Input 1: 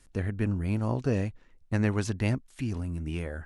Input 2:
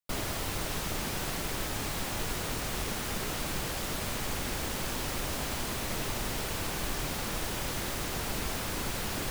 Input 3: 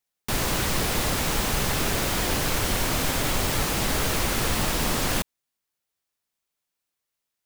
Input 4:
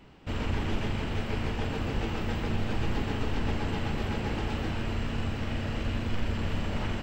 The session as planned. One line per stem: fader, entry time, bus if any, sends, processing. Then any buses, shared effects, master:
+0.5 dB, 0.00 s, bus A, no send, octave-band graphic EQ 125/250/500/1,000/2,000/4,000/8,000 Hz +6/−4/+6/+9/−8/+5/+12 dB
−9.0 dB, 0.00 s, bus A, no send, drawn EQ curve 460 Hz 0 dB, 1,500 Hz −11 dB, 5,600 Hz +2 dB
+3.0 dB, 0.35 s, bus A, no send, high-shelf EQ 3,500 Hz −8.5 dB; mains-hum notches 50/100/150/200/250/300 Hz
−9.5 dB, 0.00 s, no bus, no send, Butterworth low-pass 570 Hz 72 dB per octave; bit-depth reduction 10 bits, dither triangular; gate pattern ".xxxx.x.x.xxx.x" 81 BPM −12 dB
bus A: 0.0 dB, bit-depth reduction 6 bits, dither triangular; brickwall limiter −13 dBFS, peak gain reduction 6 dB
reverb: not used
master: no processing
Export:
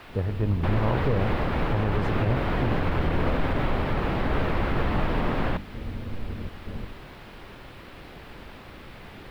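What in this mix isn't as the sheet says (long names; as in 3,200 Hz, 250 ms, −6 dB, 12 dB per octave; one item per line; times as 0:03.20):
stem 4 −9.5 dB → −3.0 dB
master: extra high-frequency loss of the air 450 metres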